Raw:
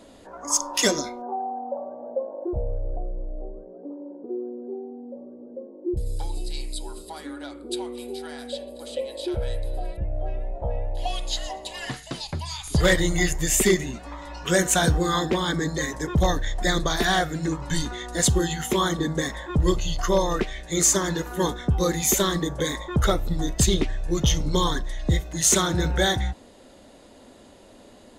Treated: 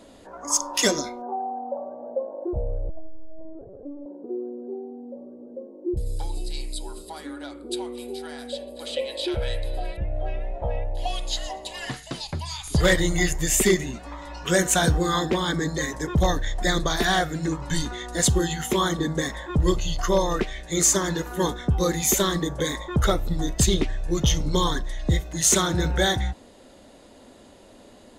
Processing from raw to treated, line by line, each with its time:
2.89–4.06 LPC vocoder at 8 kHz pitch kept
8.77–10.84 bell 2600 Hz +9.5 dB 2.1 oct

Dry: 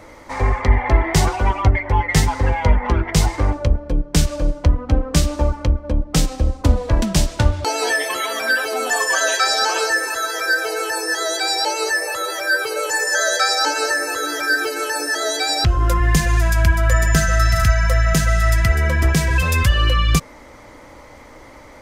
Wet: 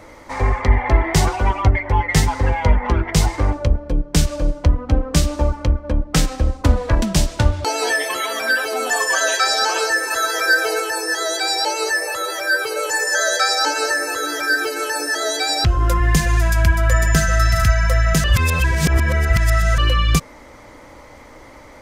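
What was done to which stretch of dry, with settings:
5.66–6.95 dynamic EQ 1600 Hz, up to +6 dB, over -42 dBFS, Q 1.1
10.11–10.8 gain +3 dB
18.24–19.78 reverse

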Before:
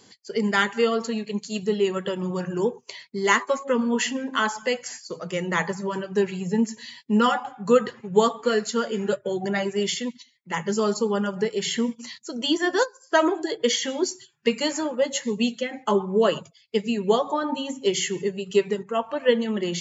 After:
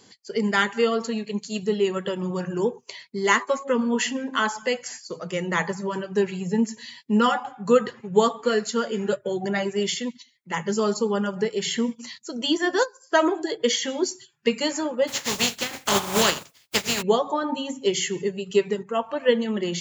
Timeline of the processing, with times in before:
15.07–17.01 spectral contrast lowered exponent 0.29

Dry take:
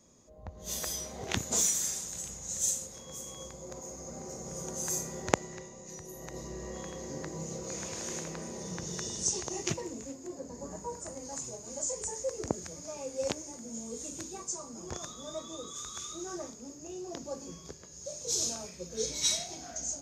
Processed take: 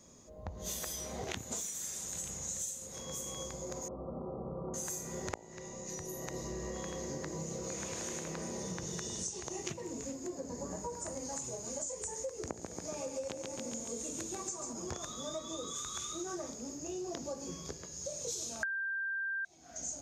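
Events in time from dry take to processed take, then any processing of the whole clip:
3.88–4.74 brick-wall FIR low-pass 1400 Hz
12.43–14.73 feedback echo 0.139 s, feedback 55%, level -6.5 dB
18.63–19.45 bleep 1580 Hz -8.5 dBFS
whole clip: de-hum 55.9 Hz, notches 17; dynamic EQ 5100 Hz, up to -4 dB, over -49 dBFS, Q 2.5; compressor 16:1, threshold -40 dBFS; gain +4 dB

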